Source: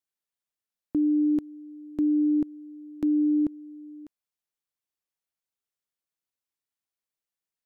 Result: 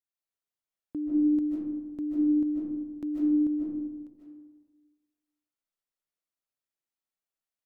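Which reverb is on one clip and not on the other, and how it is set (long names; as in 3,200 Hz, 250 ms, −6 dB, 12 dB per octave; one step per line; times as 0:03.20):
comb and all-pass reverb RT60 1.3 s, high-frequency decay 0.35×, pre-delay 110 ms, DRR −5.5 dB
level −9 dB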